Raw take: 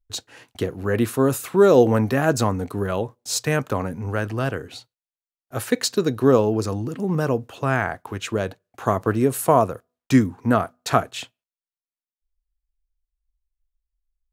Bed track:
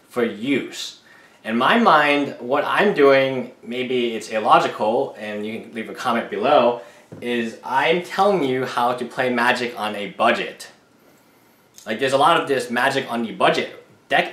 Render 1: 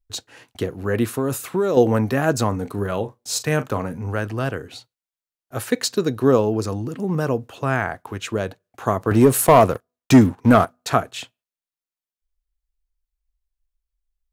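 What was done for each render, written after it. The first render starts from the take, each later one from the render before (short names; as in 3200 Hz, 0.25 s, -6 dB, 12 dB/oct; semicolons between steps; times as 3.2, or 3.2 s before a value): 1.07–1.77 compressor, threshold -16 dBFS; 2.48–4.14 doubler 39 ms -13 dB; 9.11–10.65 sample leveller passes 2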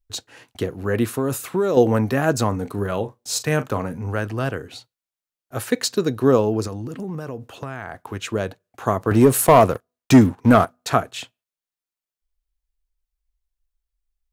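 6.67–7.96 compressor, threshold -26 dBFS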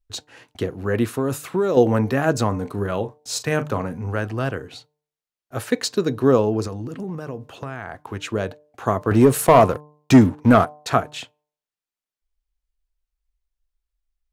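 high shelf 8600 Hz -7.5 dB; de-hum 149.5 Hz, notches 7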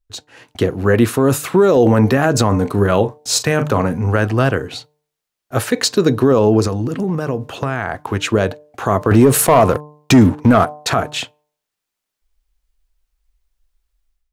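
limiter -13.5 dBFS, peak gain reduction 11.5 dB; AGC gain up to 11.5 dB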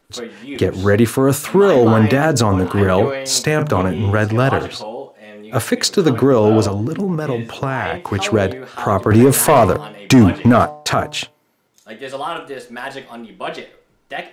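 add bed track -9.5 dB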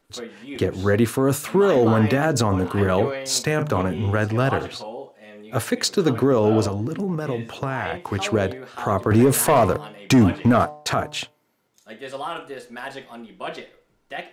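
gain -5.5 dB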